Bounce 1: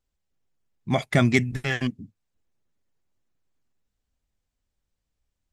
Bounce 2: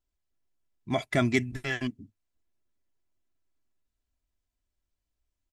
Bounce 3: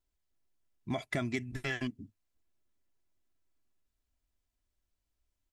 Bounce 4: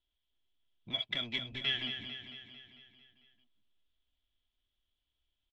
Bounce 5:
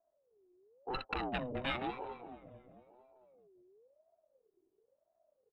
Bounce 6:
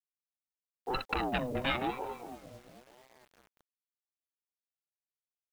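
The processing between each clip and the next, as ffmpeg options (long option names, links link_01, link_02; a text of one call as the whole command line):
ffmpeg -i in.wav -af "aecho=1:1:3:0.45,volume=-5.5dB" out.wav
ffmpeg -i in.wav -af "acompressor=threshold=-31dB:ratio=6" out.wav
ffmpeg -i in.wav -filter_complex "[0:a]lowpass=frequency=3300:width_type=q:width=11,acrossover=split=1500[link_01][link_02];[link_01]asoftclip=type=tanh:threshold=-39dB[link_03];[link_03][link_02]amix=inputs=2:normalize=0,aecho=1:1:224|448|672|896|1120|1344|1568:0.398|0.231|0.134|0.0777|0.0451|0.0261|0.0152,volume=-4.5dB" out.wav
ffmpeg -i in.wav -af "adynamicsmooth=sensitivity=5:basefreq=760,lowpass=1300,aeval=exprs='val(0)*sin(2*PI*510*n/s+510*0.3/0.97*sin(2*PI*0.97*n/s))':channel_layout=same,volume=11dB" out.wav
ffmpeg -i in.wav -filter_complex "[0:a]asplit=2[link_01][link_02];[link_02]aeval=exprs='sgn(val(0))*max(abs(val(0))-0.0015,0)':channel_layout=same,volume=-9dB[link_03];[link_01][link_03]amix=inputs=2:normalize=0,acrusher=bits=9:mix=0:aa=0.000001,volume=2.5dB" out.wav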